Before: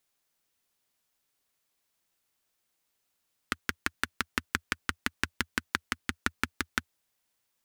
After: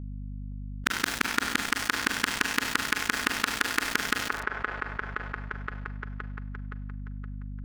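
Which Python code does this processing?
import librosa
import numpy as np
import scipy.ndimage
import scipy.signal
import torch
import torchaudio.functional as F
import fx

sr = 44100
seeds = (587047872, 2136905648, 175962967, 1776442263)

y = x[::-1].copy()
y = scipy.signal.sosfilt(scipy.signal.butter(2, 170.0, 'highpass', fs=sr, output='sos'), y)
y = fx.rev_schroeder(y, sr, rt60_s=1.4, comb_ms=33, drr_db=9.5)
y = np.sign(y) * np.maximum(np.abs(y) - 10.0 ** (-45.0 / 20.0), 0.0)
y = fx.add_hum(y, sr, base_hz=50, snr_db=34)
y = fx.echo_wet_bandpass(y, sr, ms=519, feedback_pct=35, hz=780.0, wet_db=-8)
y = fx.env_flatten(y, sr, amount_pct=70)
y = y * librosa.db_to_amplitude(3.5)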